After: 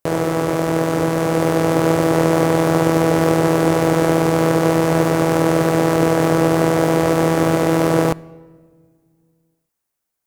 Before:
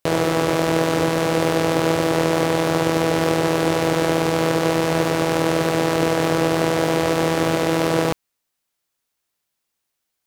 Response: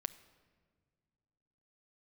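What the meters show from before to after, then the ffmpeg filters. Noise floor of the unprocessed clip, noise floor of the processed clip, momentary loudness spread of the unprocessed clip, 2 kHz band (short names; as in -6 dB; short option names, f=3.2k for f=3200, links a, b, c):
-78 dBFS, -78 dBFS, 1 LU, 0.0 dB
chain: -filter_complex "[0:a]dynaudnorm=f=260:g=11:m=11.5dB,equalizer=f=3.5k:w=0.83:g=-8,asplit=2[a][b];[1:a]atrim=start_sample=2205[c];[b][c]afir=irnorm=-1:irlink=0,volume=-0.5dB[d];[a][d]amix=inputs=2:normalize=0,volume=-4.5dB"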